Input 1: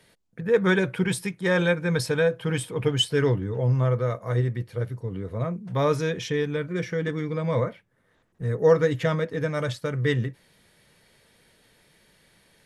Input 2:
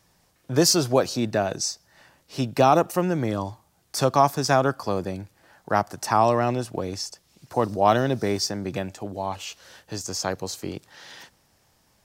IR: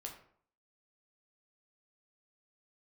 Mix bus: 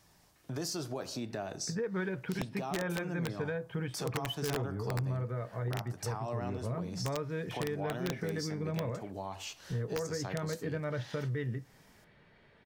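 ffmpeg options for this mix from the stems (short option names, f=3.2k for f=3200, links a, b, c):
-filter_complex "[0:a]lowpass=2.2k,alimiter=limit=-19dB:level=0:latency=1:release=363,adynamicequalizer=threshold=0.002:dfrequency=1100:dqfactor=4.5:tfrequency=1100:tqfactor=4.5:attack=5:release=100:ratio=0.375:range=2.5:mode=cutabove:tftype=bell,adelay=1300,volume=-0.5dB,asplit=2[a][b];[b]volume=-19.5dB[c];[1:a]alimiter=limit=-13dB:level=0:latency=1:release=16,acompressor=threshold=-44dB:ratio=1.5,volume=-4.5dB,asplit=2[d][e];[e]volume=-3dB[f];[2:a]atrim=start_sample=2205[g];[c][f]amix=inputs=2:normalize=0[h];[h][g]afir=irnorm=-1:irlink=0[i];[a][d][i]amix=inputs=3:normalize=0,bandreject=f=510:w=12,aeval=exprs='(mod(8.41*val(0)+1,2)-1)/8.41':c=same,acompressor=threshold=-37dB:ratio=2"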